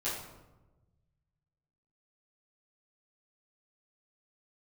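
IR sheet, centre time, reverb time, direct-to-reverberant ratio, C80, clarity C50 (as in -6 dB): 56 ms, 1.1 s, -11.0 dB, 5.5 dB, 2.5 dB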